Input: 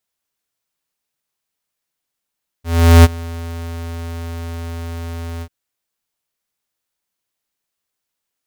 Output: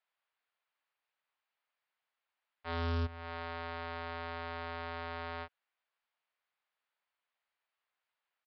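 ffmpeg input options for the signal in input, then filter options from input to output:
-f lavfi -i "aevalsrc='0.631*(2*lt(mod(83.8*t,1),0.5)-1)':duration=2.842:sample_rate=44100,afade=type=in:duration=0.401,afade=type=out:start_time=0.401:duration=0.031:silence=0.075,afade=type=out:start_time=2.78:duration=0.062"
-filter_complex "[0:a]acrossover=split=580 3000:gain=0.0794 1 0.126[link_01][link_02][link_03];[link_01][link_02][link_03]amix=inputs=3:normalize=0,acrossover=split=260[link_04][link_05];[link_05]acompressor=threshold=-31dB:ratio=10[link_06];[link_04][link_06]amix=inputs=2:normalize=0,aresample=11025,asoftclip=type=tanh:threshold=-29.5dB,aresample=44100"

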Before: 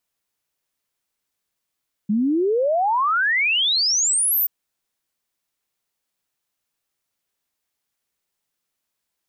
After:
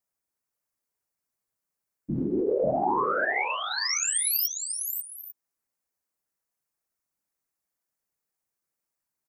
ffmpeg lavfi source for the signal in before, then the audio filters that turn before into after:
-f lavfi -i "aevalsrc='0.15*clip(min(t,2.38-t)/0.01,0,1)*sin(2*PI*200*2.38/log(15000/200)*(exp(log(15000/200)*t/2.38)-1))':duration=2.38:sample_rate=44100"
-af "equalizer=frequency=3300:width_type=o:width=0.88:gain=-11.5,afftfilt=real='hypot(re,im)*cos(2*PI*random(0))':imag='hypot(re,im)*sin(2*PI*random(1))':win_size=512:overlap=0.75,aecho=1:1:542|848:0.501|0.158"

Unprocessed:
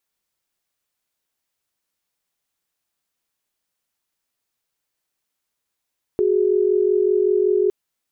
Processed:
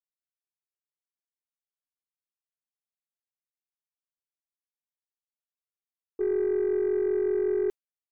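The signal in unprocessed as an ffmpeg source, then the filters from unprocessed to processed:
-f lavfi -i "aevalsrc='0.133*(sin(2*PI*369.99*t)+sin(2*PI*415.3*t))':duration=1.51:sample_rate=44100"
-af "agate=range=-33dB:threshold=-14dB:ratio=3:detection=peak,alimiter=limit=-20.5dB:level=0:latency=1:release=22,aeval=exprs='0.0944*(cos(1*acos(clip(val(0)/0.0944,-1,1)))-cos(1*PI/2))+0.00376*(cos(4*acos(clip(val(0)/0.0944,-1,1)))-cos(4*PI/2))+0.00266*(cos(5*acos(clip(val(0)/0.0944,-1,1)))-cos(5*PI/2))+0.00075*(cos(6*acos(clip(val(0)/0.0944,-1,1)))-cos(6*PI/2))':channel_layout=same"

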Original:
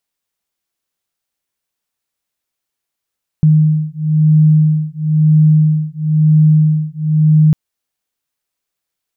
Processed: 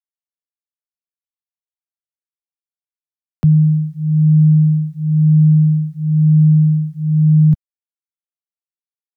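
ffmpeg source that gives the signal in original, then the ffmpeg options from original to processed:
-f lavfi -i "aevalsrc='0.282*(sin(2*PI*154*t)+sin(2*PI*155*t))':duration=4.1:sample_rate=44100"
-filter_complex "[0:a]acrossover=split=120|140|190[link_01][link_02][link_03][link_04];[link_04]acompressor=threshold=-40dB:ratio=4[link_05];[link_01][link_02][link_03][link_05]amix=inputs=4:normalize=0,acrusher=bits=10:mix=0:aa=0.000001,acompressor=mode=upward:threshold=-28dB:ratio=2.5"

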